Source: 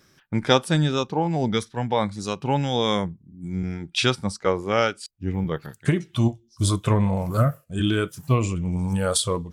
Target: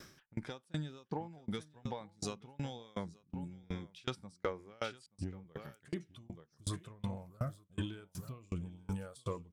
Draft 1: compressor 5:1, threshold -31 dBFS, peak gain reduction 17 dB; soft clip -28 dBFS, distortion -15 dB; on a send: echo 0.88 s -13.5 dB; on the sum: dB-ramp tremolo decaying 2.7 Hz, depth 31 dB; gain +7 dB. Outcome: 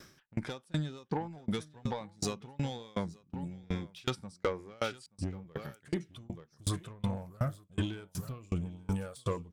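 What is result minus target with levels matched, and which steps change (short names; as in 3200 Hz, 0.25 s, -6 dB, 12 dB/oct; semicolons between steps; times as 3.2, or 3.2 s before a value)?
compressor: peak gain reduction -7 dB
change: compressor 5:1, threshold -40 dBFS, peak gain reduction 24.5 dB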